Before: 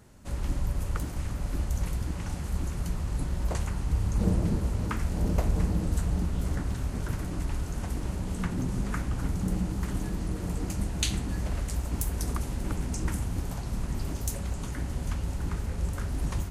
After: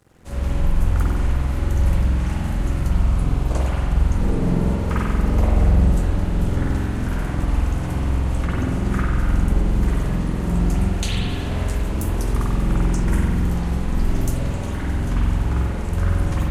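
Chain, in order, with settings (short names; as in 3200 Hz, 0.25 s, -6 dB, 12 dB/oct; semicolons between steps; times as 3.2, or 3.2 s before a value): 2.89–3.62 notch 1900 Hz, Q 11; in parallel at 0 dB: limiter -22 dBFS, peak gain reduction 10.5 dB; on the sum: crossover distortion -49.5 dBFS; spring tank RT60 1.6 s, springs 46 ms, chirp 50 ms, DRR -7.5 dB; gain -3.5 dB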